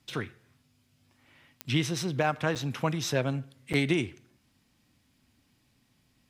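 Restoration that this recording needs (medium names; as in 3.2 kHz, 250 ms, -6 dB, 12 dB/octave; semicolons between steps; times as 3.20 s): de-click; interpolate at 2.55/3.73 s, 7.4 ms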